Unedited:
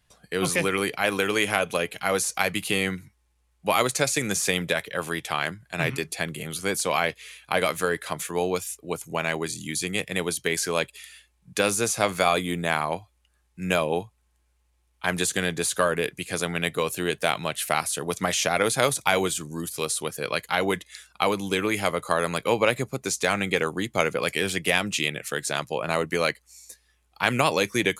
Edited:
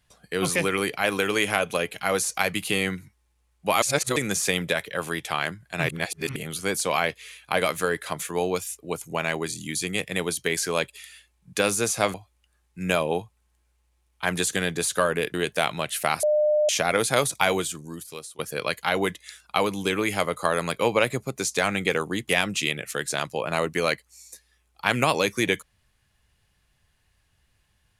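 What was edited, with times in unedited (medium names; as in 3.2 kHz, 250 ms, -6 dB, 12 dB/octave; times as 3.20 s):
3.82–4.16 s: reverse
5.89–6.36 s: reverse
12.14–12.95 s: delete
16.15–17.00 s: delete
17.89–18.35 s: bleep 603 Hz -17.5 dBFS
19.14–20.05 s: fade out, to -20.5 dB
23.95–24.66 s: delete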